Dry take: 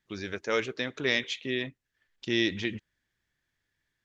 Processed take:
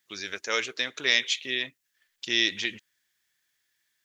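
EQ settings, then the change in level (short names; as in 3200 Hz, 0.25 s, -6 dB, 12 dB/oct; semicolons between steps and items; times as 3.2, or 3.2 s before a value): tilt +4 dB/oct; 0.0 dB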